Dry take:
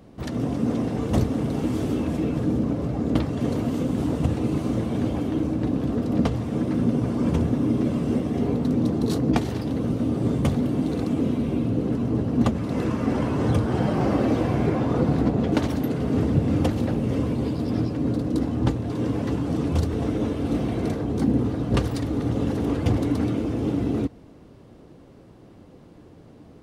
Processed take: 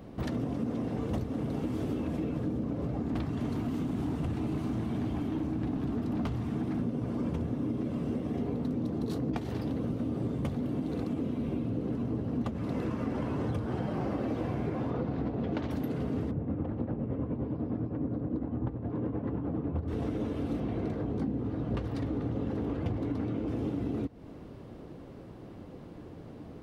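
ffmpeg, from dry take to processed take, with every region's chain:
-filter_complex "[0:a]asettb=1/sr,asplit=3[a][b][c];[a]atrim=end=3.024[d];[b]atrim=start=3.02:end=6.8,asetpts=PTS-STARTPTS,afade=t=in:d=0.004:c=qsin,afade=t=out:st=3.776:d=0.004:c=qsin,equalizer=f=530:t=o:w=0.33:g=-14,volume=21dB,asoftclip=hard,volume=-21dB[e];[c]atrim=start=6.796[f];[d][e]acrossfade=d=0.004:c1=hsin:c2=qsin[g];[g][f]acrossfade=d=0.004:c1=qsin:c2=hsin,asettb=1/sr,asplit=3[h][i][j];[h]atrim=end=14.904[k];[i]atrim=start=14.9:end=15.71,asetpts=PTS-STARTPTS,afade=t=in:d=0.004:c=qsin,afade=t=out:st=0.806:d=0.004:c=qsin,lowpass=4.8k,bandreject=f=50:t=h:w=6,bandreject=f=100:t=h:w=6,bandreject=f=150:t=h:w=6,bandreject=f=200:t=h:w=6,bandreject=f=250:t=h:w=6,bandreject=f=300:t=h:w=6,bandreject=f=350:t=h:w=6[l];[j]atrim=start=15.706[m];[k][l]acrossfade=d=0.004:c1=hsin:c2=qsin[n];[n][m]acrossfade=d=0.004:c1=qsin:c2=hsin,asettb=1/sr,asplit=3[o][p][q];[o]atrim=end=16.314[r];[p]atrim=start=16.31:end=19.88,asetpts=PTS-STARTPTS,afade=t=in:d=0.004:c=qsin,afade=t=out:st=3.566:d=0.004:c=qsin,lowpass=1.4k,tremolo=f=9.8:d=0.55[s];[q]atrim=start=19.876[t];[r][s]acrossfade=d=0.004:c1=hsin:c2=qsin[u];[u][t]acrossfade=d=0.004:c1=qsin:c2=hsin,asettb=1/sr,asplit=3[v][w][x];[v]atrim=end=20.604[y];[w]atrim=start=20.6:end=23.48,asetpts=PTS-STARTPTS,afade=t=in:d=0.004:c=qsin,afade=t=out:st=2.876:d=0.004:c=qsin,lowpass=f=3.1k:p=1,asplit=2[z][aa];[aa]adelay=19,volume=-12.5dB[ab];[z][ab]amix=inputs=2:normalize=0,atrim=end_sample=127008[ac];[x]atrim=start=23.476[ad];[y][ac]acrossfade=d=0.004:c1=hsin:c2=qsin[ae];[ae][ad]acrossfade=d=0.004:c1=qsin:c2=hsin,equalizer=f=7.8k:t=o:w=1.7:g=-6,acompressor=threshold=-32dB:ratio=6,volume=2dB"

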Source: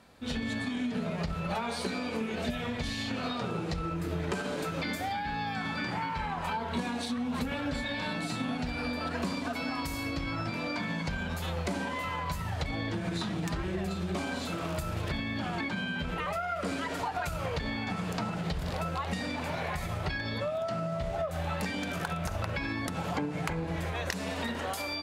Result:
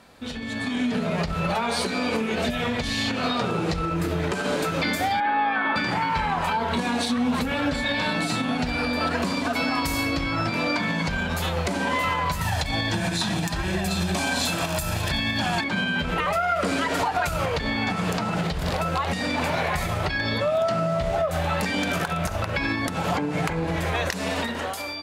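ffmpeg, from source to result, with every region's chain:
-filter_complex "[0:a]asettb=1/sr,asplit=3[a][b][c];[a]atrim=end=5.204[d];[b]atrim=start=5.2:end=5.76,asetpts=PTS-STARTPTS,afade=t=in:d=0.004:c=qsin,afade=t=out:st=0.556:d=0.004:c=qsin,highpass=360,equalizer=f=460:t=q:w=4:g=4,equalizer=f=1.1k:t=q:w=4:g=4,equalizer=f=2.5k:t=q:w=4:g=-4,lowpass=f=2.8k:w=0.5412,lowpass=f=2.8k:w=1.3066,aecho=1:1:3.3:0.57,atrim=end_sample=24696[e];[c]atrim=start=5.756[f];[d][e]acrossfade=d=0.004:c1=hsin:c2=qsin[g];[g][f]acrossfade=d=0.004:c1=qsin:c2=hsin,asettb=1/sr,asplit=3[h][i][j];[h]atrim=end=12.414[k];[i]atrim=start=12.41:end=15.64,asetpts=PTS-STARTPTS,afade=t=in:d=0.004:c=qsin,afade=t=out:st=3.226:d=0.004:c=qsin,highshelf=f=3.6k:g=10,aecho=1:1:1.2:0.41,atrim=end_sample=142443[l];[j]atrim=start=15.636[m];[k][l]acrossfade=d=0.004:c1=hsin:c2=qsin[n];[n][m]acrossfade=d=0.004:c1=qsin:c2=hsin,alimiter=level_in=6dB:limit=-24dB:level=0:latency=1:release=457,volume=-6dB,dynaudnorm=f=100:g=13:m=9dB,equalizer=f=74:w=0.3:g=-3.5,volume=7dB"

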